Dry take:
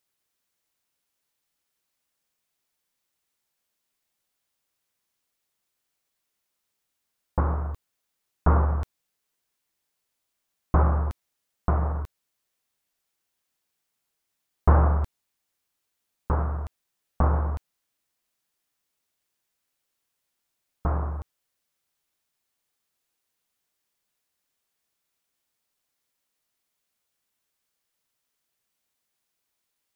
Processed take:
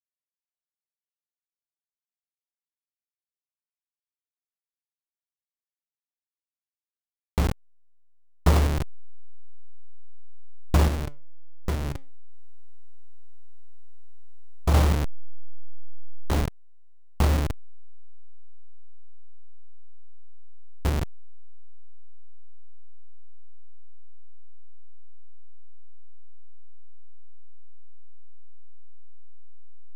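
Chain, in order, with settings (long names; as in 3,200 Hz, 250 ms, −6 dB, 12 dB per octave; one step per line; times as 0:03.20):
hold until the input has moved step −19 dBFS
0:10.88–0:14.74: flanger 1.3 Hz, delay 5.9 ms, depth 1.6 ms, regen +86%
level +1 dB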